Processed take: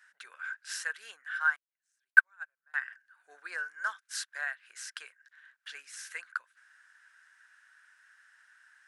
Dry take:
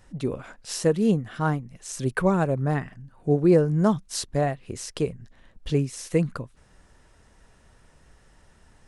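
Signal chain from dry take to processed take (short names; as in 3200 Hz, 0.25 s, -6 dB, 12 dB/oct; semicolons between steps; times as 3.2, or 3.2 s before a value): ladder high-pass 1500 Hz, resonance 85%; 1.56–2.74 upward expander 2.5:1, over -44 dBFS; gain +5.5 dB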